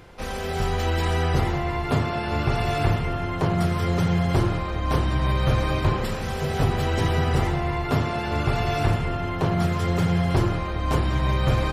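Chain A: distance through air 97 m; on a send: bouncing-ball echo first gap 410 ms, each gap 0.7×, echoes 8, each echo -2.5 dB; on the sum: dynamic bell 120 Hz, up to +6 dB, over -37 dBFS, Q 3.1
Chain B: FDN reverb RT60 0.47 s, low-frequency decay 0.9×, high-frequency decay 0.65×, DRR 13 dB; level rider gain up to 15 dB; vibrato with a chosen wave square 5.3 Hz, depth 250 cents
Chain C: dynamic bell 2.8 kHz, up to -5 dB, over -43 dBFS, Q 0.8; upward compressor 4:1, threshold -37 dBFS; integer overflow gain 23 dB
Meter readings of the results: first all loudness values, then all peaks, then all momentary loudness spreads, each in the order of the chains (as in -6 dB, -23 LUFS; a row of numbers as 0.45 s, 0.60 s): -19.5 LUFS, -14.5 LUFS, -27.0 LUFS; -4.0 dBFS, -1.0 dBFS, -23.0 dBFS; 3 LU, 5 LU, 2 LU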